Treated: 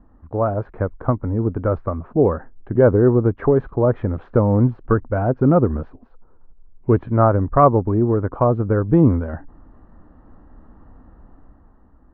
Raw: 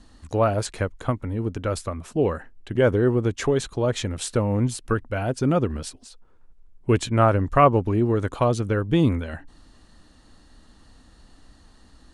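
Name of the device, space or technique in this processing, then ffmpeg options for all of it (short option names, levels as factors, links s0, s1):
action camera in a waterproof case: -af "lowpass=f=1300:w=0.5412,lowpass=f=1300:w=1.3066,dynaudnorm=f=150:g=11:m=2.24" -ar 16000 -c:a aac -b:a 64k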